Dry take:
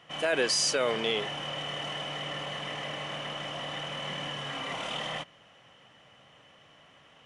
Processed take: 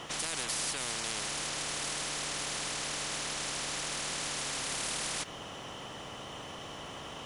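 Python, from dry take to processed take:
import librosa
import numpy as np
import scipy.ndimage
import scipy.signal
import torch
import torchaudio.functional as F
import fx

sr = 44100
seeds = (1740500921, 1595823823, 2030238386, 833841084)

y = fx.peak_eq(x, sr, hz=2000.0, db=-13.5, octaves=1.8)
y = fx.spectral_comp(y, sr, ratio=10.0)
y = y * librosa.db_to_amplitude(1.0)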